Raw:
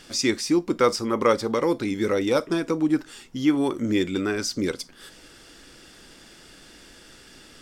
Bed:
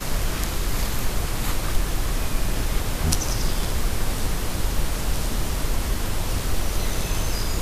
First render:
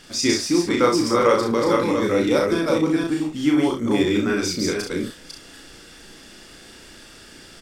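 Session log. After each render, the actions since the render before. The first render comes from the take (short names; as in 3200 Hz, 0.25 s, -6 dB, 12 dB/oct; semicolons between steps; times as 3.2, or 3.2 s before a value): reverse delay 0.253 s, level -2 dB; early reflections 34 ms -3 dB, 64 ms -7 dB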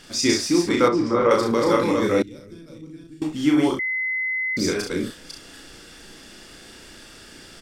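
0.88–1.31 tape spacing loss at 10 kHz 25 dB; 2.22–3.22 passive tone stack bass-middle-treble 10-0-1; 3.79–4.57 bleep 2040 Hz -22 dBFS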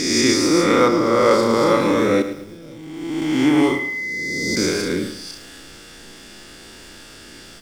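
spectral swells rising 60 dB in 1.54 s; lo-fi delay 0.109 s, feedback 35%, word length 7-bit, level -11 dB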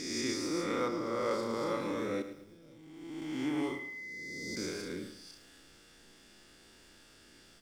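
gain -18 dB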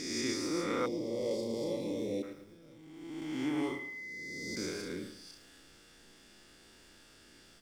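0.86–2.23 Butterworth band-stop 1400 Hz, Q 0.65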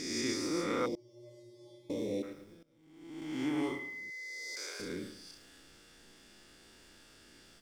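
0.95–1.9 resonator 120 Hz, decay 1.1 s, harmonics odd, mix 100%; 2.63–3.42 fade in, from -20.5 dB; 4.1–4.8 HPF 580 Hz 24 dB/oct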